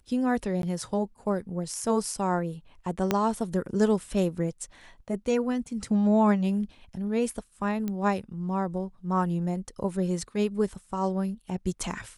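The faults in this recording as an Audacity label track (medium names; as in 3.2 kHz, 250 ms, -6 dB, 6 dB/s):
0.620000	0.630000	dropout 12 ms
3.110000	3.110000	pop -9 dBFS
7.880000	7.880000	pop -19 dBFS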